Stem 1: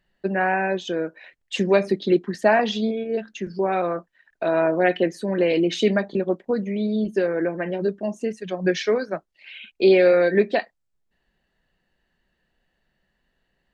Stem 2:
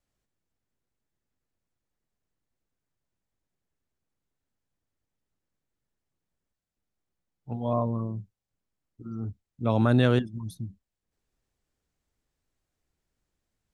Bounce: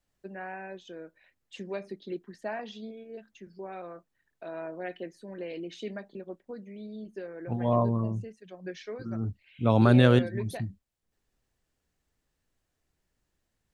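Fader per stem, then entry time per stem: −18.0, +2.0 decibels; 0.00, 0.00 seconds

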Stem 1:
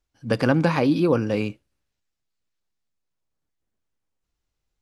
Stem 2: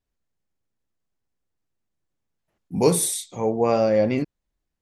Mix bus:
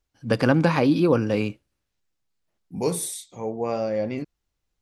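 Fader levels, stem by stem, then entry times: +0.5, −6.5 decibels; 0.00, 0.00 seconds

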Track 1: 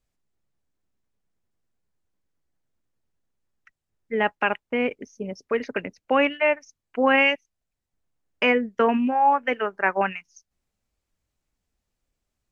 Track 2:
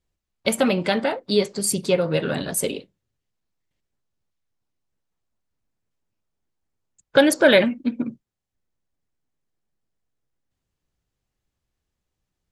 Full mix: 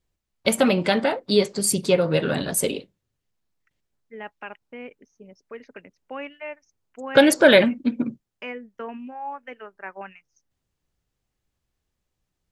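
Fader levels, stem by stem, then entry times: −14.5, +1.0 decibels; 0.00, 0.00 seconds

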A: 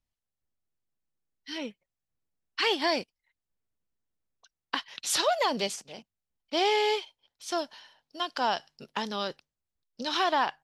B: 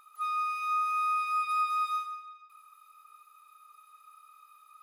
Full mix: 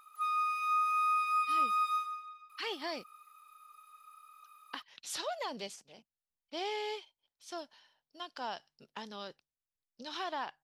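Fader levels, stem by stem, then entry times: −12.0, −1.0 decibels; 0.00, 0.00 seconds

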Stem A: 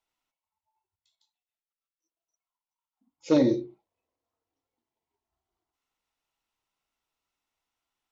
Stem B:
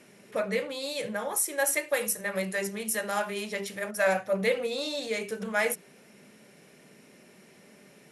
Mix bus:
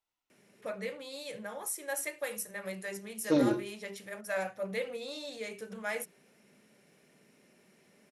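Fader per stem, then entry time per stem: −5.0, −9.0 decibels; 0.00, 0.30 seconds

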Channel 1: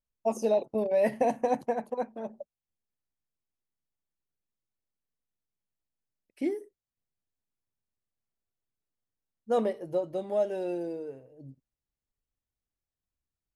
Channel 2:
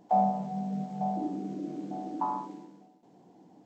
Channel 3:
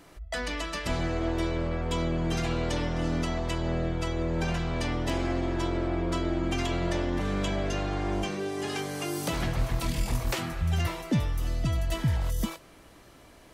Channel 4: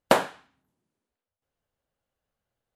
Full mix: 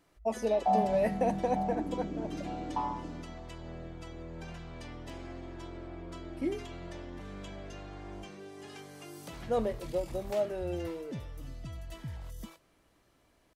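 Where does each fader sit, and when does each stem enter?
−3.5 dB, −2.5 dB, −15.0 dB, muted; 0.00 s, 0.55 s, 0.00 s, muted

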